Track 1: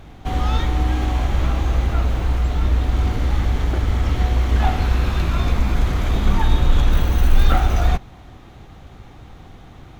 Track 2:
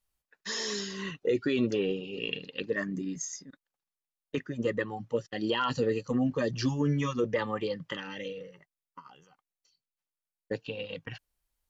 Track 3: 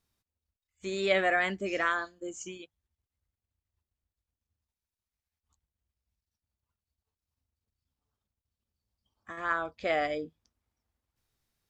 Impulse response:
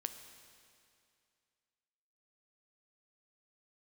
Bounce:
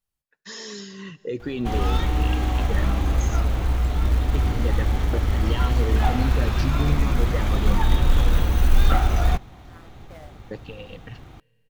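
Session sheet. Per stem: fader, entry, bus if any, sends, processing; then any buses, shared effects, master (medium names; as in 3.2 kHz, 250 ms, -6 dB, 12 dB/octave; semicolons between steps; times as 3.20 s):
-2.5 dB, 1.40 s, no send, short-mantissa float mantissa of 4-bit
-6.0 dB, 0.00 s, send -7.5 dB, peaking EQ 120 Hz +7 dB 1.8 oct
-17.0 dB, 0.25 s, no send, send-on-delta sampling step -25.5 dBFS; tilt EQ -2 dB/octave; auto duck -21 dB, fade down 0.25 s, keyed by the second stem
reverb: on, RT60 2.4 s, pre-delay 8 ms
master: none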